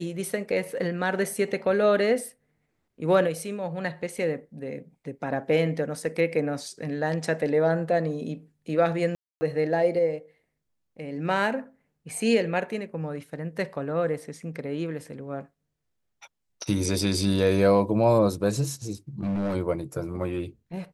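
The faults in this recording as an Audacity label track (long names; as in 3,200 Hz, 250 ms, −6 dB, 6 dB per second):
9.150000	9.410000	drop-out 260 ms
19.210000	19.560000	clipping −24 dBFS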